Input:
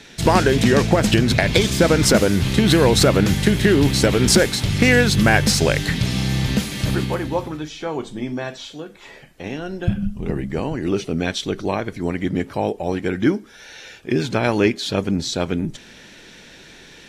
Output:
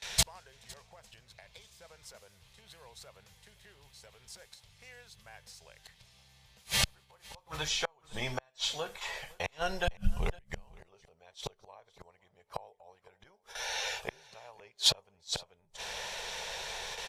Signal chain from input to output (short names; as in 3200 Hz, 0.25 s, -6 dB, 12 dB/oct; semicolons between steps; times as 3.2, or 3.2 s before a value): gate with hold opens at -34 dBFS; band shelf 660 Hz +9 dB, from 10.8 s +16 dB; flipped gate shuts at -12 dBFS, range -38 dB; passive tone stack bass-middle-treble 10-0-10; echo 0.508 s -23 dB; gain +6.5 dB